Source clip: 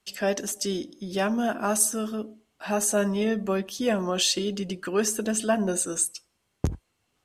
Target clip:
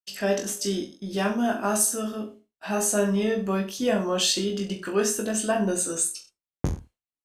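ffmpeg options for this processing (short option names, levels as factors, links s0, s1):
-af "agate=range=0.0224:threshold=0.01:ratio=3:detection=peak,aecho=1:1:20|42|66.2|92.82|122.1:0.631|0.398|0.251|0.158|0.1,volume=0.841"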